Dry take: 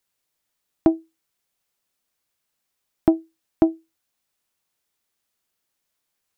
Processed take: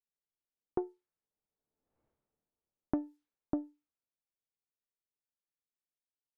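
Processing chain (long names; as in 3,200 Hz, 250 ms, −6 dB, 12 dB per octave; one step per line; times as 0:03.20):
source passing by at 0:02.02, 35 m/s, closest 2.8 metres
low-pass that shuts in the quiet parts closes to 580 Hz, open at −42.5 dBFS
in parallel at −2 dB: soft clipping −33 dBFS, distortion −13 dB
on the sum: tuned comb filter 440 Hz, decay 0.24 s, harmonics all, mix 60%
downward compressor, threshold −42 dBFS, peak gain reduction 6.5 dB
level +14 dB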